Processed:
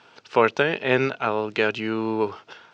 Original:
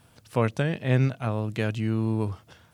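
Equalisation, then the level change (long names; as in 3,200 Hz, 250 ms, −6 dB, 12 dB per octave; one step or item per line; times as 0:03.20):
high-frequency loss of the air 120 metres
loudspeaker in its box 290–6,400 Hz, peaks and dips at 410 Hz +9 dB, 890 Hz +7 dB, 1,400 Hz +7 dB, 2,600 Hz +4 dB
high-shelf EQ 2,200 Hz +10 dB
+3.5 dB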